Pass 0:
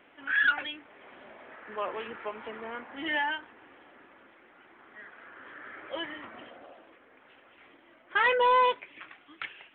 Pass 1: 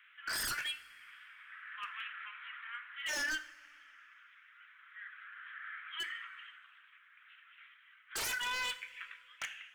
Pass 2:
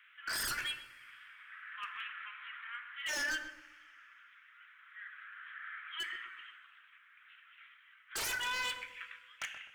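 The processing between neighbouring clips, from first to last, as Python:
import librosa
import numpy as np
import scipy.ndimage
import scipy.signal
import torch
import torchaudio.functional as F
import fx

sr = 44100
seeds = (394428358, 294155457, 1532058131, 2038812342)

y1 = scipy.signal.sosfilt(scipy.signal.butter(8, 1300.0, 'highpass', fs=sr, output='sos'), x)
y1 = 10.0 ** (-32.0 / 20.0) * (np.abs((y1 / 10.0 ** (-32.0 / 20.0) + 3.0) % 4.0 - 2.0) - 1.0)
y1 = fx.rev_double_slope(y1, sr, seeds[0], early_s=0.43, late_s=2.0, knee_db=-16, drr_db=9.5)
y2 = fx.echo_filtered(y1, sr, ms=127, feedback_pct=40, hz=960.0, wet_db=-6.0)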